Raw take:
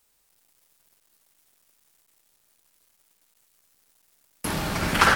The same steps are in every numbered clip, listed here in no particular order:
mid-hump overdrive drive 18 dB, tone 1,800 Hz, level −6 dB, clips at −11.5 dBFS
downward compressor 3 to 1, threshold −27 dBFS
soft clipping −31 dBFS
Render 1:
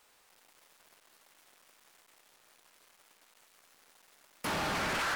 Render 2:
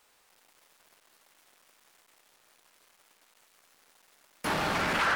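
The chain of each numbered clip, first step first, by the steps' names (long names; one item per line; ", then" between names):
downward compressor, then mid-hump overdrive, then soft clipping
downward compressor, then soft clipping, then mid-hump overdrive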